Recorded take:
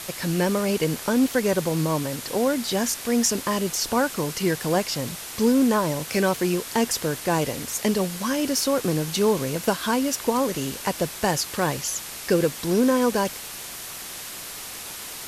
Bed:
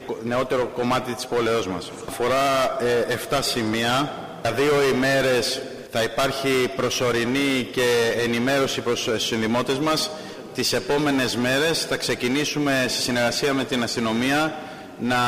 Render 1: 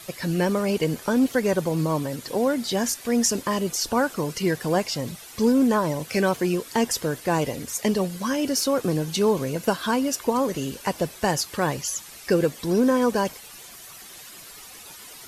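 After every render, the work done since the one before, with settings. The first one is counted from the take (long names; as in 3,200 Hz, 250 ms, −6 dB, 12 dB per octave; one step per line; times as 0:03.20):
broadband denoise 11 dB, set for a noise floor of −37 dBFS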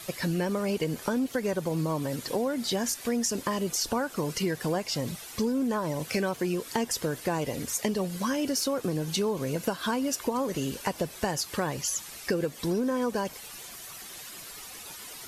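downward compressor, threshold −25 dBFS, peak gain reduction 9.5 dB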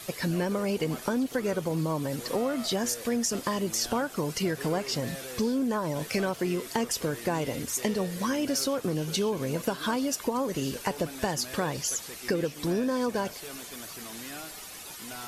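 mix in bed −22 dB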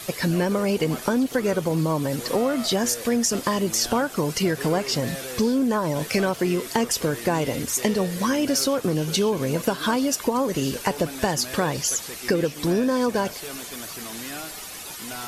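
level +6 dB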